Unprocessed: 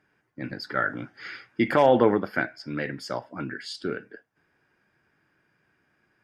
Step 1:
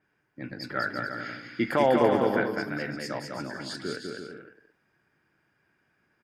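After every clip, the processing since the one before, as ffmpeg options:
ffmpeg -i in.wav -filter_complex "[0:a]asplit=2[link_01][link_02];[link_02]aecho=0:1:200|340|438|506.6|554.6:0.631|0.398|0.251|0.158|0.1[link_03];[link_01][link_03]amix=inputs=2:normalize=0,adynamicequalizer=threshold=0.00562:dfrequency=5800:dqfactor=0.7:tfrequency=5800:tqfactor=0.7:attack=5:release=100:ratio=0.375:range=3.5:mode=boostabove:tftype=highshelf,volume=-4dB" out.wav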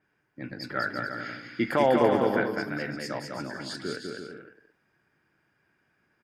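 ffmpeg -i in.wav -af anull out.wav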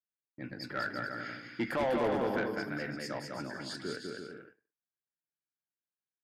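ffmpeg -i in.wav -af "agate=range=-33dB:threshold=-45dB:ratio=3:detection=peak,asoftclip=type=tanh:threshold=-21dB,volume=-4dB" out.wav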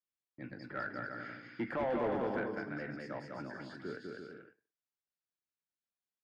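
ffmpeg -i in.wav -filter_complex "[0:a]lowpass=6100,acrossover=split=390|2400[link_01][link_02][link_03];[link_03]acompressor=threshold=-59dB:ratio=6[link_04];[link_01][link_02][link_04]amix=inputs=3:normalize=0,volume=-3.5dB" out.wav

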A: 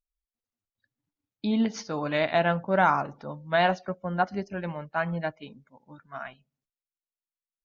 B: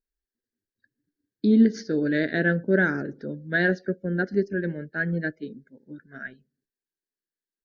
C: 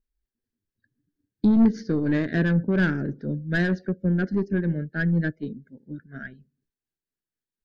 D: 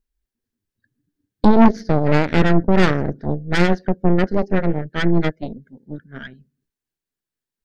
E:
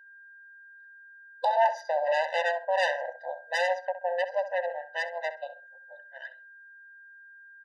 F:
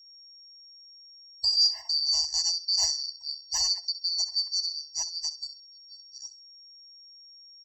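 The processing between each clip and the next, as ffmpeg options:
ffmpeg -i in.wav -af "firequalizer=gain_entry='entry(110,0);entry(230,8);entry(400,12);entry(730,-16);entry(1100,-28);entry(1600,10);entry(2500,-14);entry(4300,1);entry(6500,-5)':delay=0.05:min_phase=1" out.wav
ffmpeg -i in.wav -af "aeval=exprs='(tanh(8.91*val(0)+0.2)-tanh(0.2))/8.91':channel_layout=same,tremolo=f=4.2:d=0.35,bass=frequency=250:gain=12,treble=frequency=4000:gain=-3" out.wav
ffmpeg -i in.wav -af "aeval=exprs='0.376*(cos(1*acos(clip(val(0)/0.376,-1,1)))-cos(1*PI/2))+0.15*(cos(6*acos(clip(val(0)/0.376,-1,1)))-cos(6*PI/2))':channel_layout=same,volume=3.5dB" out.wav
ffmpeg -i in.wav -filter_complex "[0:a]aeval=exprs='val(0)+0.00447*sin(2*PI*1600*n/s)':channel_layout=same,asplit=2[link_01][link_02];[link_02]adelay=65,lowpass=frequency=2500:poles=1,volume=-11.5dB,asplit=2[link_03][link_04];[link_04]adelay=65,lowpass=frequency=2500:poles=1,volume=0.25,asplit=2[link_05][link_06];[link_06]adelay=65,lowpass=frequency=2500:poles=1,volume=0.25[link_07];[link_01][link_03][link_05][link_07]amix=inputs=4:normalize=0,afftfilt=real='re*eq(mod(floor(b*sr/1024/510),2),1)':imag='im*eq(mod(floor(b*sr/1024/510),2),1)':win_size=1024:overlap=0.75,volume=-3.5dB" out.wav
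ffmpeg -i in.wav -af "afftfilt=real='real(if(lt(b,736),b+184*(1-2*mod(floor(b/184),2)),b),0)':imag='imag(if(lt(b,736),b+184*(1-2*mod(floor(b/184),2)),b),0)':win_size=2048:overlap=0.75" out.wav

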